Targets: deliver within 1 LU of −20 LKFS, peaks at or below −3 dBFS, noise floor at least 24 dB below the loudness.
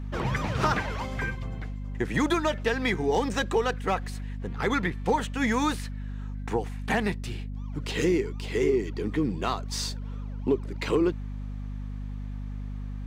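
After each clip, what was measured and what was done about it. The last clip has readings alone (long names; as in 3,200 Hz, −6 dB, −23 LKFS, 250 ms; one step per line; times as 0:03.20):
mains hum 50 Hz; hum harmonics up to 250 Hz; level of the hum −32 dBFS; integrated loudness −29.0 LKFS; sample peak −13.5 dBFS; target loudness −20.0 LKFS
→ mains-hum notches 50/100/150/200/250 Hz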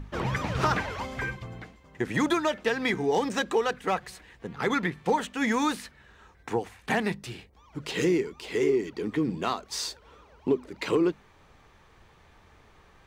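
mains hum none found; integrated loudness −28.5 LKFS; sample peak −14.0 dBFS; target loudness −20.0 LKFS
→ level +8.5 dB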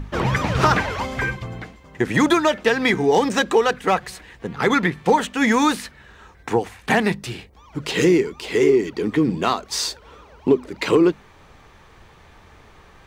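integrated loudness −20.0 LKFS; sample peak −5.5 dBFS; background noise floor −49 dBFS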